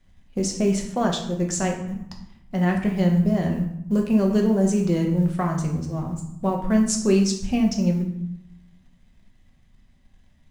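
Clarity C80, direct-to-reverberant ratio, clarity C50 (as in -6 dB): 9.5 dB, 1.0 dB, 7.0 dB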